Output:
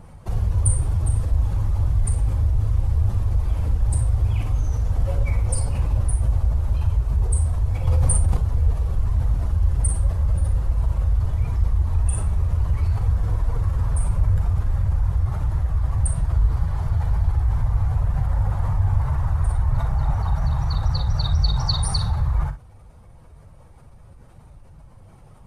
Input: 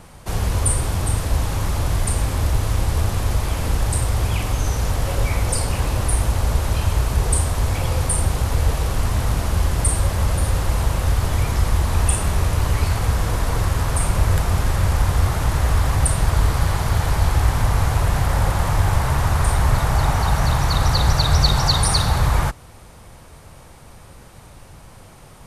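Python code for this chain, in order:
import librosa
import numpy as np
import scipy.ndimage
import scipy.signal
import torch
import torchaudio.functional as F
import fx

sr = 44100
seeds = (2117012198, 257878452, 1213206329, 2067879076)

p1 = fx.spec_expand(x, sr, power=1.6)
p2 = fx.rider(p1, sr, range_db=3, speed_s=2.0)
p3 = p2 + fx.room_early_taps(p2, sr, ms=(40, 61), db=(-11.0, -13.0), dry=0)
p4 = fx.env_flatten(p3, sr, amount_pct=100, at=(7.87, 8.37))
y = p4 * 10.0 ** (-2.0 / 20.0)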